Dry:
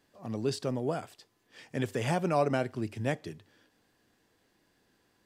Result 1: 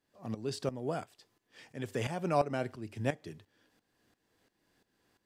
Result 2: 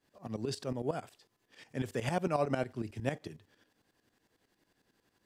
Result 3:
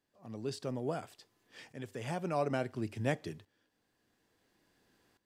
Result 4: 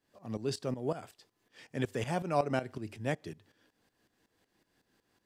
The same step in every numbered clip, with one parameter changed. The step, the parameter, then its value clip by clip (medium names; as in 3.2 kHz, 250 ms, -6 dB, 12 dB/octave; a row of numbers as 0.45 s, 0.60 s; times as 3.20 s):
tremolo, rate: 2.9 Hz, 11 Hz, 0.58 Hz, 5.4 Hz